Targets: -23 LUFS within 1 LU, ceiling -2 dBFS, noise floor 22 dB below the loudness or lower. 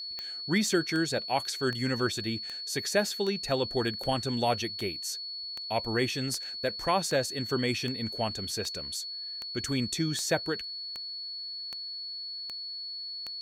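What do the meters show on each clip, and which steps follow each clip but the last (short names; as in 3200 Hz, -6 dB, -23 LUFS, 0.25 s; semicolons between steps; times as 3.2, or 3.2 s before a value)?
clicks 18; steady tone 4400 Hz; tone level -36 dBFS; loudness -31.0 LUFS; peak -13.5 dBFS; loudness target -23.0 LUFS
-> de-click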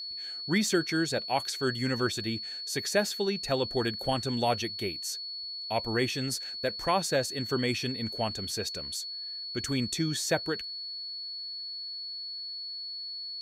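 clicks 0; steady tone 4400 Hz; tone level -36 dBFS
-> notch 4400 Hz, Q 30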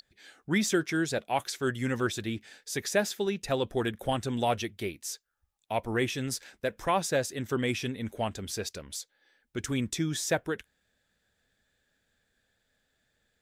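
steady tone none; loudness -31.5 LUFS; peak -13.5 dBFS; loudness target -23.0 LUFS
-> gain +8.5 dB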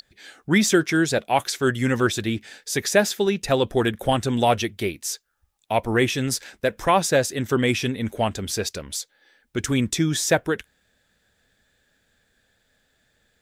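loudness -23.0 LUFS; peak -5.0 dBFS; noise floor -68 dBFS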